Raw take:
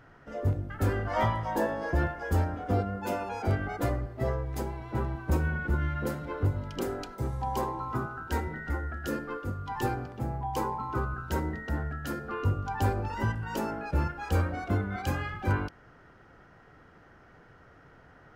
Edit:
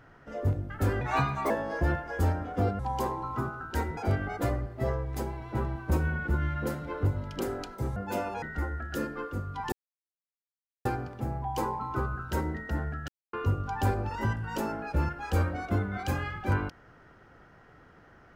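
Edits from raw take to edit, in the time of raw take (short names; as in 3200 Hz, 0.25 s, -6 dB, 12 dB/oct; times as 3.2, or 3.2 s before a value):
1.01–1.62 speed 124%
2.91–3.37 swap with 7.36–8.54
9.84 insert silence 1.13 s
12.07–12.32 mute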